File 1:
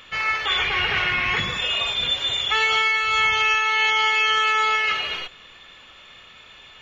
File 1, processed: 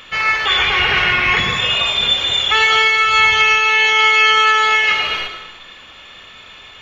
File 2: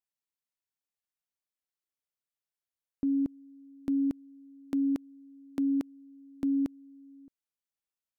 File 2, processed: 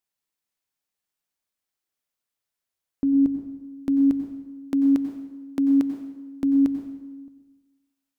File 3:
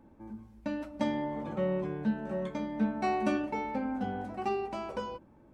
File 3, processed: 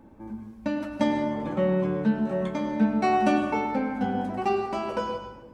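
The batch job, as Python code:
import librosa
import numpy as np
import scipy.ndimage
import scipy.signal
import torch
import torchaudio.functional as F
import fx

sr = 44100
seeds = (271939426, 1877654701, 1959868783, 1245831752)

y = fx.hum_notches(x, sr, base_hz=50, count=3)
y = fx.rev_plate(y, sr, seeds[0], rt60_s=1.1, hf_ratio=0.8, predelay_ms=80, drr_db=7.0)
y = y * 10.0 ** (6.5 / 20.0)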